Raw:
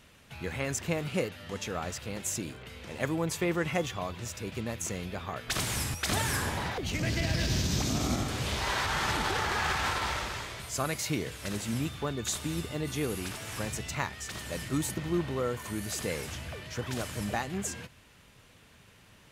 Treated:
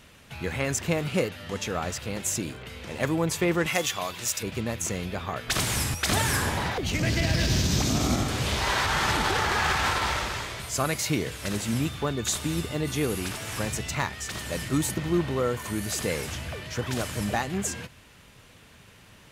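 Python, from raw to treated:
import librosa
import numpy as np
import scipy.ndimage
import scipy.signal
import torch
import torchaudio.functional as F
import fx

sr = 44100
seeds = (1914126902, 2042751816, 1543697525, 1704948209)

y = np.clip(x, -10.0 ** (-20.5 / 20.0), 10.0 ** (-20.5 / 20.0))
y = fx.tilt_eq(y, sr, slope=3.0, at=(3.66, 4.43))
y = y * librosa.db_to_amplitude(5.0)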